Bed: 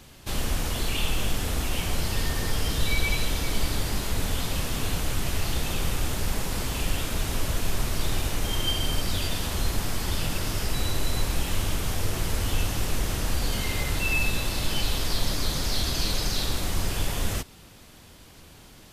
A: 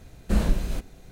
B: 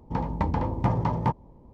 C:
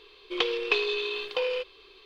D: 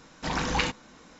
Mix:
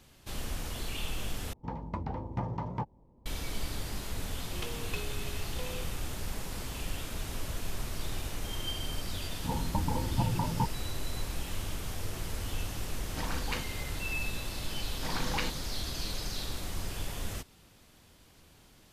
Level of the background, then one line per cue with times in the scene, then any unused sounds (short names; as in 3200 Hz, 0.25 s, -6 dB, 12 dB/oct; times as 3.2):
bed -9.5 dB
1.53 replace with B -10 dB + record warp 78 rpm, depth 160 cents
4.22 add C -12 dB + half-wave gain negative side -12 dB
9.34 add B -5 dB + spectral gate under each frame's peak -15 dB strong
12.93 add D -6.5 dB + noise-modulated level
14.79 add D -7.5 dB
not used: A